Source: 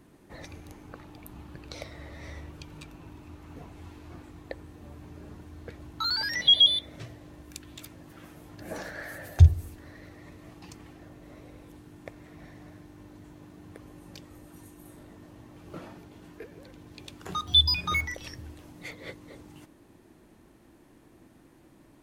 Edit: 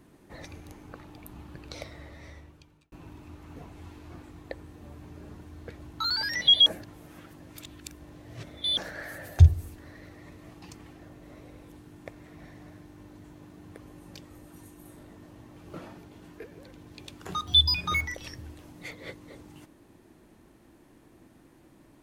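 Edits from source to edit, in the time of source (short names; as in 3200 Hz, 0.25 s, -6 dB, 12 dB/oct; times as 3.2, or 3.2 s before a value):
1.82–2.92 fade out
6.66–8.77 reverse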